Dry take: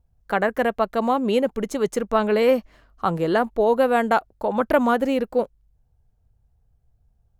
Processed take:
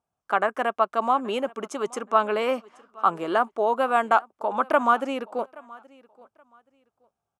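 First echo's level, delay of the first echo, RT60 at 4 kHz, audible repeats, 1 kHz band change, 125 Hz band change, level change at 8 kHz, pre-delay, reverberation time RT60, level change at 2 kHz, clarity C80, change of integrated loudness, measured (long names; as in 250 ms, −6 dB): −23.5 dB, 825 ms, no reverb audible, 1, +1.5 dB, −13.5 dB, can't be measured, no reverb audible, no reverb audible, −1.5 dB, no reverb audible, −3.0 dB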